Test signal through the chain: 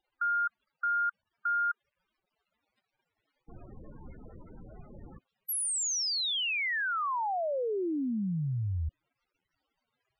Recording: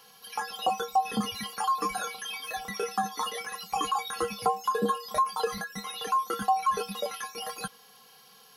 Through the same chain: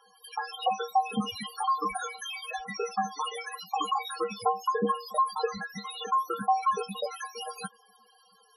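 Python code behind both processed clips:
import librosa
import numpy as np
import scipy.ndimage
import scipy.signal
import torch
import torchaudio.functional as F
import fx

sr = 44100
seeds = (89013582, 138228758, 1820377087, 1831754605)

y = fx.dmg_crackle(x, sr, seeds[0], per_s=310.0, level_db=-53.0)
y = fx.spec_topn(y, sr, count=16)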